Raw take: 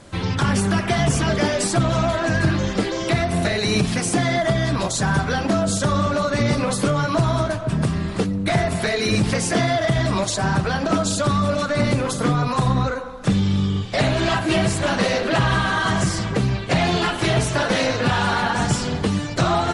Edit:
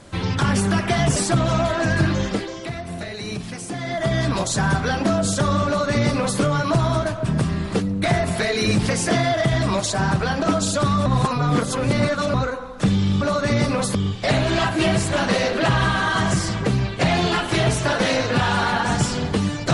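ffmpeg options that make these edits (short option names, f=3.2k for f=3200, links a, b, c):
-filter_complex "[0:a]asplit=8[a][b][c][d][e][f][g][h];[a]atrim=end=1.162[i];[b]atrim=start=1.598:end=3.16,asetpts=PTS-STARTPTS,afade=t=out:st=1.102:d=0.46:c=qua:silence=0.316228[j];[c]atrim=start=3.16:end=4.12,asetpts=PTS-STARTPTS,volume=-10dB[k];[d]atrim=start=4.12:end=11.502,asetpts=PTS-STARTPTS,afade=t=in:d=0.46:c=qua:silence=0.316228[l];[e]atrim=start=11.498:end=12.782,asetpts=PTS-STARTPTS,areverse[m];[f]atrim=start=12.778:end=13.652[n];[g]atrim=start=6.098:end=6.842[o];[h]atrim=start=13.648[p];[j][k][l]concat=n=3:v=0:a=1[q];[i][q]acrossfade=d=0.004:c1=hsin:c2=hsin[r];[r][m]acrossfade=d=0.004:c1=hsin:c2=hsin[s];[s][n]acrossfade=d=0.004:c1=hsin:c2=hsin[t];[t][o]acrossfade=d=0.004:c1=hsin:c2=hsin[u];[u][p]acrossfade=d=0.004:c1=hsin:c2=hsin"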